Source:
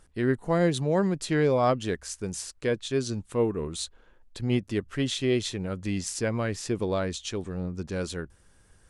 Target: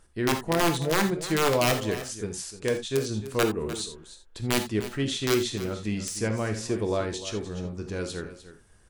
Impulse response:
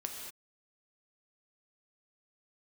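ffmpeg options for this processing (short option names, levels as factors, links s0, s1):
-filter_complex "[0:a]aeval=exprs='(mod(5.96*val(0)+1,2)-1)/5.96':c=same,aecho=1:1:301:0.2[s0];[1:a]atrim=start_sample=2205,atrim=end_sample=3969[s1];[s0][s1]afir=irnorm=-1:irlink=0,volume=1.19"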